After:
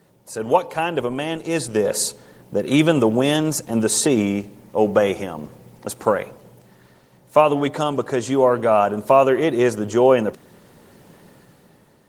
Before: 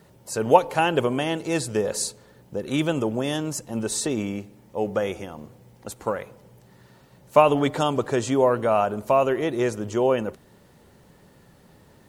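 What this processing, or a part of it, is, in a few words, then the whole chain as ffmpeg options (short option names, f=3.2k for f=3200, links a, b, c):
video call: -af "highpass=120,dynaudnorm=f=210:g=9:m=13.5dB,volume=-1dB" -ar 48000 -c:a libopus -b:a 20k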